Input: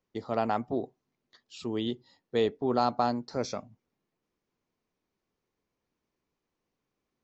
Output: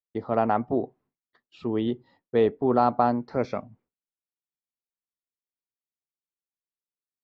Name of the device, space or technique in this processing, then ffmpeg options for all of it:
hearing-loss simulation: -filter_complex "[0:a]asettb=1/sr,asplit=3[a][b][c];[a]atrim=end=3.194[d];[b]atrim=start=3.19:end=3.6,asetpts=PTS-STARTPTS,afade=t=in:d=0.004:c=qsin,afade=t=out:st=0.406:d=0.004:c=qsin,equalizer=f=2.2k:w=2.8:g=5.5[e];[c]atrim=start=3.596[f];[d][e]acrossfade=d=0.004:c1=hsin:c2=qsin[g];[g][f]acrossfade=d=0.004:c1=qsin:c2=hsin,lowpass=1.9k,agate=range=-33dB:threshold=-59dB:ratio=3:detection=peak,volume=5.5dB"

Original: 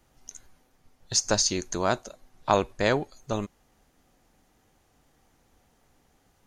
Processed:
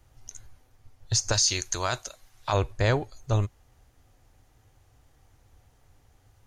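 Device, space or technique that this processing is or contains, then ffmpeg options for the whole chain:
car stereo with a boomy subwoofer: -filter_complex "[0:a]asettb=1/sr,asplit=3[a][b][c];[a]atrim=end=1.324[d];[b]atrim=start=1.32:end=2.53,asetpts=PTS-STARTPTS,afade=t=in:d=0.004:c=qsin,afade=t=out:st=1.206:d=0.004:c=qsin,tiltshelf=f=930:g=-8[e];[c]atrim=start=2.526[f];[d][e]acrossfade=d=0.004:c1=hsin:c2=qsin[g];[g][f]acrossfade=d=0.004:c1=qsin:c2=hsin,lowshelf=f=140:t=q:w=3:g=7.5,alimiter=limit=-13dB:level=0:latency=1:release=16"

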